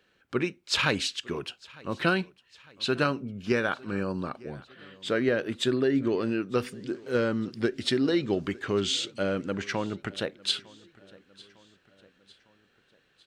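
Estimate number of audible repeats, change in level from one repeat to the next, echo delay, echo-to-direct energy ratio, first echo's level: 3, -5.5 dB, 0.904 s, -22.0 dB, -23.5 dB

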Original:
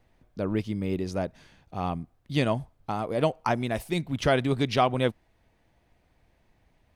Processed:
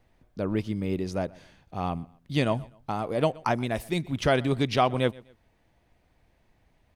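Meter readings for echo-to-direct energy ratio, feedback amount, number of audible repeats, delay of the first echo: -22.5 dB, 34%, 2, 0.125 s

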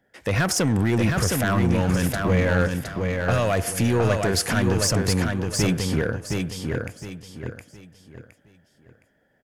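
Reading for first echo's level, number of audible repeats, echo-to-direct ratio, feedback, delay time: -4.0 dB, 4, -3.5 dB, 32%, 0.715 s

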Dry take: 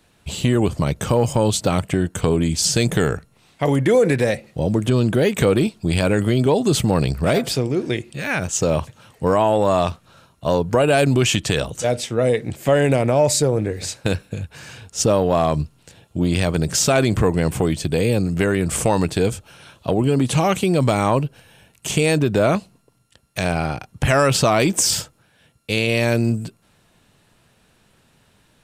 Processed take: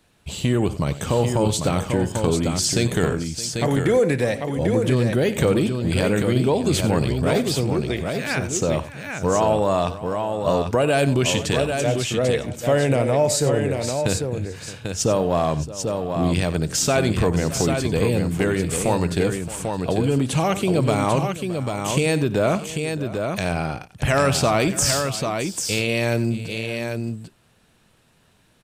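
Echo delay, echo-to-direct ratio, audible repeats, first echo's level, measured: 57 ms, -4.5 dB, 4, -19.5 dB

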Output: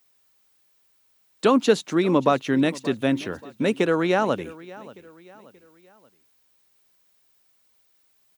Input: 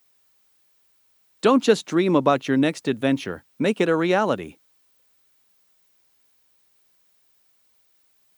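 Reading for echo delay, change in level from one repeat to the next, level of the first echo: 0.58 s, -7.5 dB, -19.5 dB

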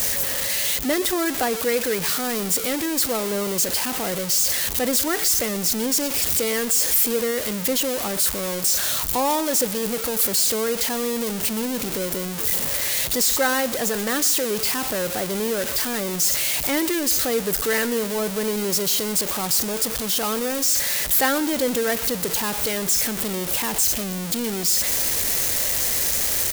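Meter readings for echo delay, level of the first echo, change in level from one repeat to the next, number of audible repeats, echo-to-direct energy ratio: 0.123 s, -19.0 dB, -7.5 dB, 2, -18.5 dB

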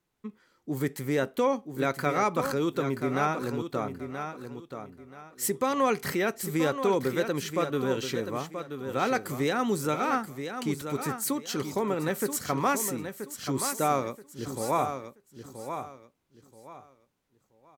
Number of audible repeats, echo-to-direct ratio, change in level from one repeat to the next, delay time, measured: 3, -8.0 dB, -11.5 dB, 0.979 s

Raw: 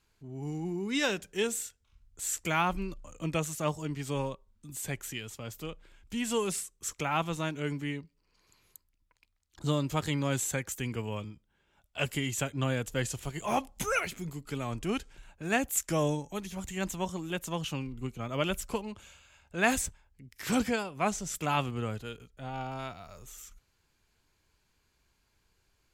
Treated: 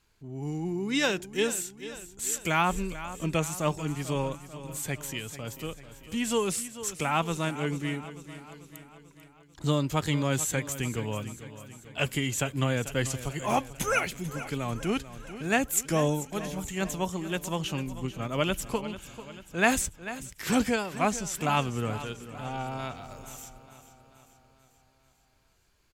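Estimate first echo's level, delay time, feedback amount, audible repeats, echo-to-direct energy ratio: -14.0 dB, 0.442 s, 56%, 5, -12.5 dB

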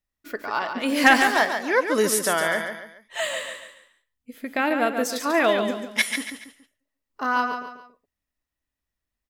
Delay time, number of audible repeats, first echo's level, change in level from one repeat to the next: 0.141 s, 3, -7.0 dB, -8.5 dB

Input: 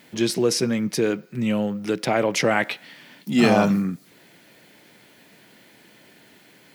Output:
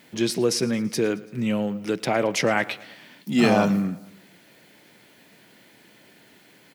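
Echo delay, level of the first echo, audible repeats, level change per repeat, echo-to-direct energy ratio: 0.111 s, -21.0 dB, 3, -5.0 dB, -19.5 dB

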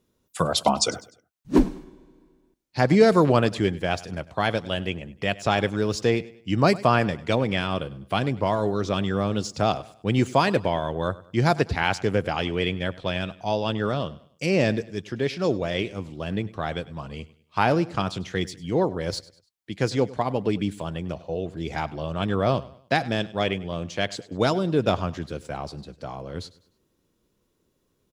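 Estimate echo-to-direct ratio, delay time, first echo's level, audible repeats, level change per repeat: -19.0 dB, 0.1 s, -19.5 dB, 2, -8.5 dB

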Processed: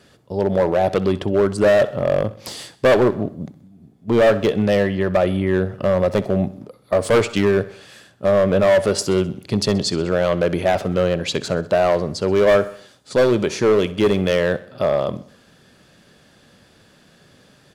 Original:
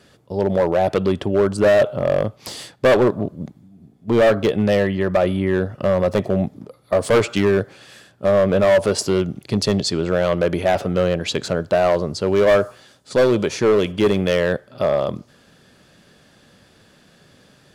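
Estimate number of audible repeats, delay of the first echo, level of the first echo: 3, 64 ms, -18.0 dB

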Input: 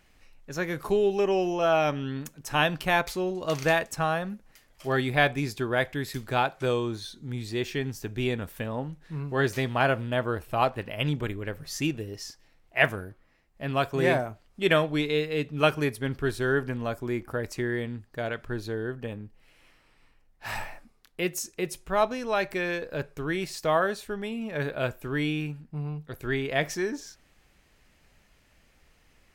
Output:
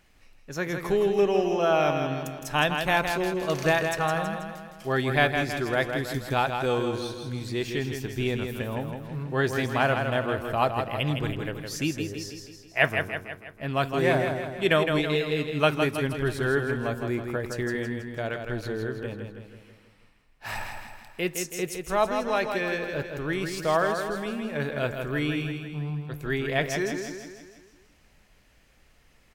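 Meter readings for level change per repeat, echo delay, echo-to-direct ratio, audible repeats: -5.5 dB, 0.162 s, -4.5 dB, 6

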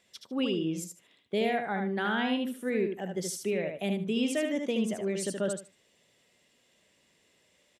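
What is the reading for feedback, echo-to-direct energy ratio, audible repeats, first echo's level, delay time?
18%, -5.0 dB, 3, -5.0 dB, 75 ms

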